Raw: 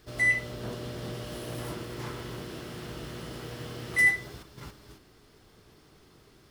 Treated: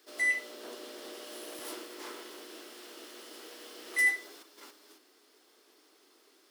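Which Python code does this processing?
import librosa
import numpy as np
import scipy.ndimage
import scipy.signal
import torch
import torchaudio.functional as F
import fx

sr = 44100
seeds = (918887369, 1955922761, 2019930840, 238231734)

y = scipy.signal.sosfilt(scipy.signal.butter(8, 270.0, 'highpass', fs=sr, output='sos'), x)
y = fx.high_shelf(y, sr, hz=3300.0, db=7.0)
y = fx.band_widen(y, sr, depth_pct=100, at=(1.59, 3.86))
y = y * librosa.db_to_amplitude(-6.0)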